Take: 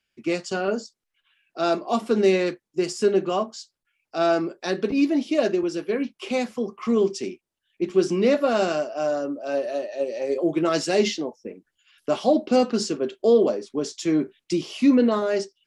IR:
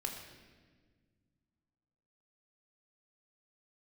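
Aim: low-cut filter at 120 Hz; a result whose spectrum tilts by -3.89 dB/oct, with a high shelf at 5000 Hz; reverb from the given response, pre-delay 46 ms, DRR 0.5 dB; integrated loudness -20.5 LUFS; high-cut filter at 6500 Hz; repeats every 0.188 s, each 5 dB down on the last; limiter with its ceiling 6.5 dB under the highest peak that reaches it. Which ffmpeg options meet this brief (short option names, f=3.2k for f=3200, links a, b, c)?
-filter_complex "[0:a]highpass=120,lowpass=6.5k,highshelf=f=5k:g=5,alimiter=limit=-14.5dB:level=0:latency=1,aecho=1:1:188|376|564|752|940|1128|1316:0.562|0.315|0.176|0.0988|0.0553|0.031|0.0173,asplit=2[a][b];[1:a]atrim=start_sample=2205,adelay=46[c];[b][c]afir=irnorm=-1:irlink=0,volume=-1dB[d];[a][d]amix=inputs=2:normalize=0,volume=0.5dB"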